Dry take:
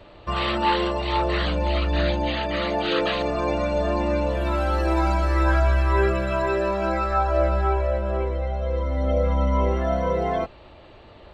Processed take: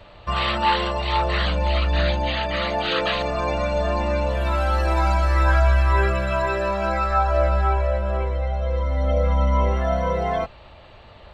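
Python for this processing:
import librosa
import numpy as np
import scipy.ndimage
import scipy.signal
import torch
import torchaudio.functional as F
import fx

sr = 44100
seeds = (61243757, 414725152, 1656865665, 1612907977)

y = fx.peak_eq(x, sr, hz=330.0, db=-9.5, octaves=1.0)
y = F.gain(torch.from_numpy(y), 3.0).numpy()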